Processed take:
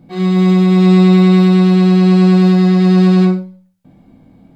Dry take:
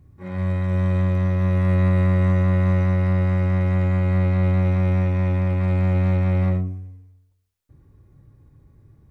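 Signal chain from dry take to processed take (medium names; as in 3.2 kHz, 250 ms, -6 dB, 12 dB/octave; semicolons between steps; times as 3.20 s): gated-style reverb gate 280 ms falling, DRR 2.5 dB; speed mistake 7.5 ips tape played at 15 ips; trim +5 dB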